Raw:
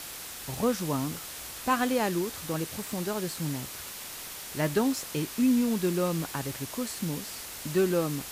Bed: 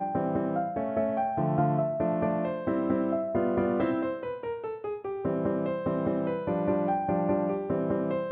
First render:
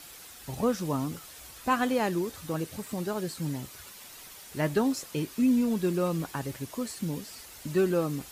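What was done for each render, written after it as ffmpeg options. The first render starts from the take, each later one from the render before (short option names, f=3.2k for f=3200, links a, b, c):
-af "afftdn=nr=9:nf=-41"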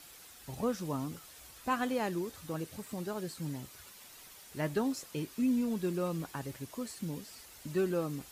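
-af "volume=-6dB"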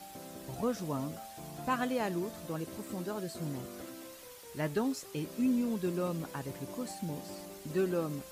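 -filter_complex "[1:a]volume=-19.5dB[a];[0:a][a]amix=inputs=2:normalize=0"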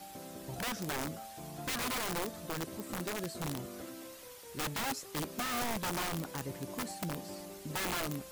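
-af "aeval=exprs='(mod(31.6*val(0)+1,2)-1)/31.6':c=same"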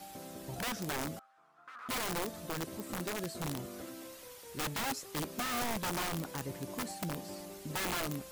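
-filter_complex "[0:a]asettb=1/sr,asplit=3[a][b][c];[a]atrim=end=1.194[d];[b]atrim=start=1.19:end=1.89,asetpts=PTS-STARTPTS,afade=t=in:d=0.004:c=qsin,afade=t=out:st=0.696:d=0.004:c=qsin,bandpass=f=1.3k:t=q:w=7.2[e];[c]atrim=start=1.886[f];[d][e]acrossfade=d=0.004:c1=hsin:c2=qsin[g];[g][f]acrossfade=d=0.004:c1=qsin:c2=hsin"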